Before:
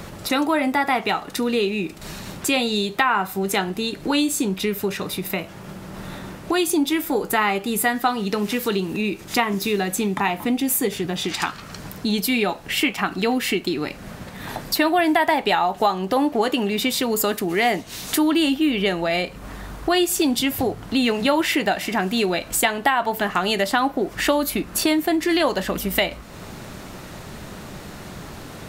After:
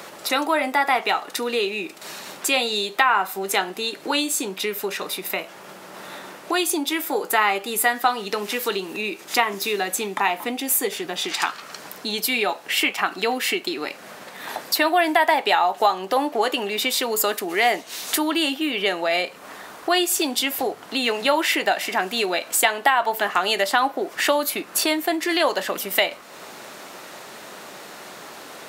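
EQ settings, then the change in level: high-pass 450 Hz 12 dB/octave; +1.5 dB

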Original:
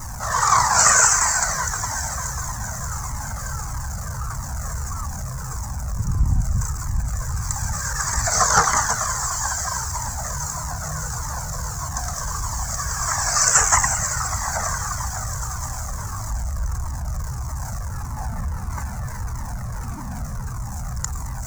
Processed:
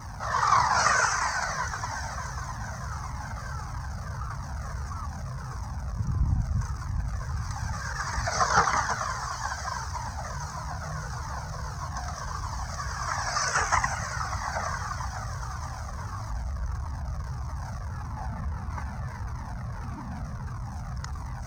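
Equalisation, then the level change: Savitzky-Golay filter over 15 samples; high-pass 51 Hz; -4.5 dB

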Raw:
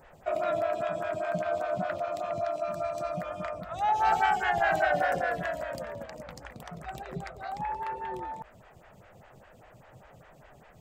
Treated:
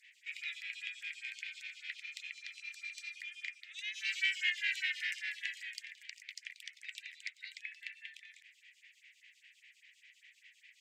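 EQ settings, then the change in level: steep high-pass 2 kHz 72 dB/octave; distance through air 55 m; treble shelf 5 kHz -5 dB; +8.5 dB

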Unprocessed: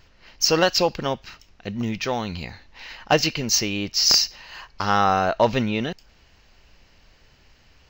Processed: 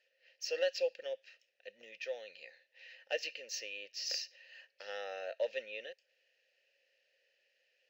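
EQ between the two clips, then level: vowel filter e; differentiator; peaking EQ 530 Hz +8 dB 1 oct; +5.5 dB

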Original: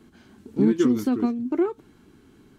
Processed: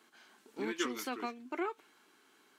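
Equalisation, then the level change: high-pass 790 Hz 12 dB/octave; dynamic bell 2.4 kHz, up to +6 dB, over -59 dBFS, Q 1.7; -1.5 dB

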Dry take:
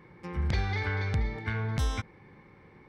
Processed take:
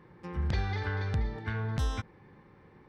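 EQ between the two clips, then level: treble shelf 5.5 kHz -5 dB; band-stop 2.2 kHz, Q 8.7; -1.5 dB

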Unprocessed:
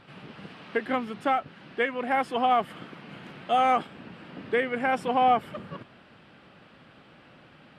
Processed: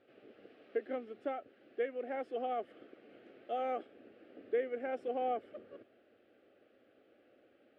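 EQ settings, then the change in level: band-pass filter 540 Hz, Q 0.85; static phaser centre 400 Hz, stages 4; -5.5 dB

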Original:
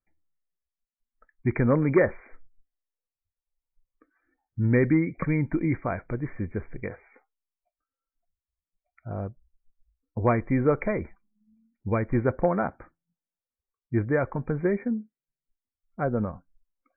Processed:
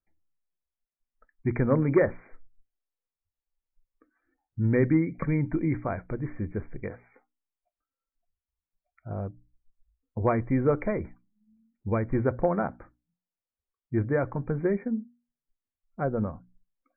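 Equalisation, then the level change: distance through air 450 m; hum notches 60/120/180/240/300 Hz; 0.0 dB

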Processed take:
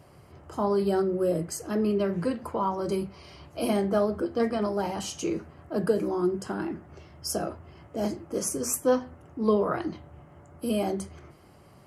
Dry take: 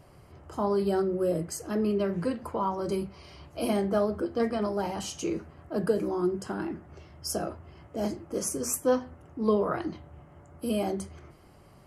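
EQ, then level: high-pass 67 Hz; +1.5 dB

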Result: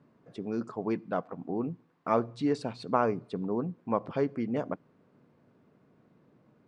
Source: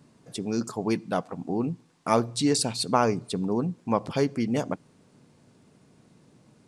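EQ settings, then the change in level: low-pass 1.2 kHz 12 dB/octave; tilt EQ +2.5 dB/octave; peaking EQ 840 Hz -4.5 dB 0.48 oct; 0.0 dB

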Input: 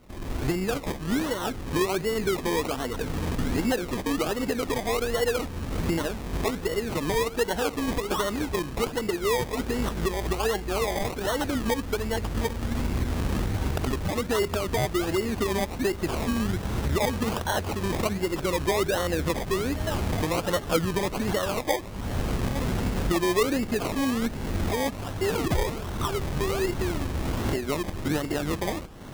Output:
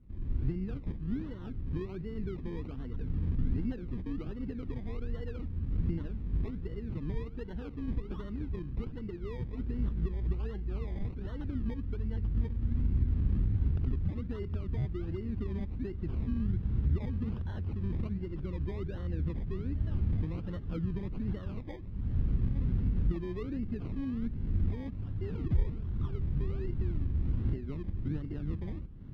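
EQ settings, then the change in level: distance through air 320 m; tilt shelf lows +8 dB, about 870 Hz; amplifier tone stack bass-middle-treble 6-0-2; +4.5 dB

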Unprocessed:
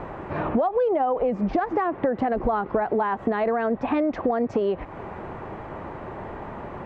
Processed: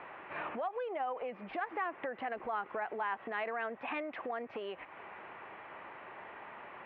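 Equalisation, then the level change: band-pass filter 2.7 kHz, Q 1.8; distance through air 360 m; +4.0 dB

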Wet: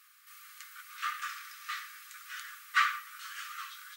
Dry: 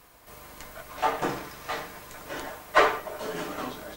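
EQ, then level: brick-wall FIR high-pass 1.1 kHz; -3.0 dB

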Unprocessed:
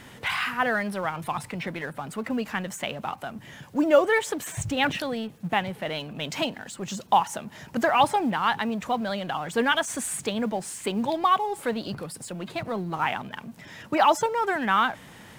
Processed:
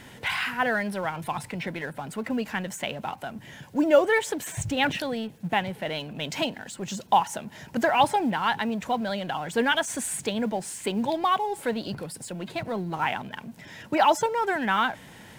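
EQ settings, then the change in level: band-stop 1.2 kHz, Q 6.9; 0.0 dB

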